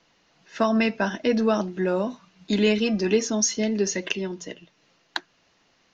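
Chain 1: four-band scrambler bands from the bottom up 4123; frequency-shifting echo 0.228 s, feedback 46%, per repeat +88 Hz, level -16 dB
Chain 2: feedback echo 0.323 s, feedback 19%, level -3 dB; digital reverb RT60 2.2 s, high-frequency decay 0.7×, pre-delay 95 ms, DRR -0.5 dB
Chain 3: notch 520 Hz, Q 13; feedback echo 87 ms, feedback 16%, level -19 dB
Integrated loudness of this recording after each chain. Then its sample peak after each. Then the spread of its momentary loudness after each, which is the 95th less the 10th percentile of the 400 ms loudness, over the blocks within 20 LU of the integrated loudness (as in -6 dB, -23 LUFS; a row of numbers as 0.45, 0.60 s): -21.5, -20.0, -24.5 LUFS; -7.5, -6.0, -8.5 dBFS; 14, 13, 13 LU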